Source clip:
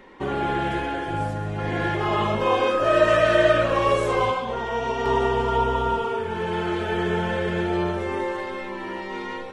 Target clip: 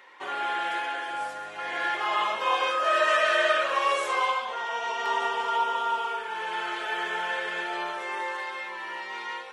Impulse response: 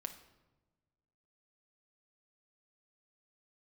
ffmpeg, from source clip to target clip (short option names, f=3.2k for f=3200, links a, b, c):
-filter_complex "[0:a]highpass=970,asplit=2[a][b];[1:a]atrim=start_sample=2205[c];[b][c]afir=irnorm=-1:irlink=0,volume=1.5dB[d];[a][d]amix=inputs=2:normalize=0,volume=-4.5dB"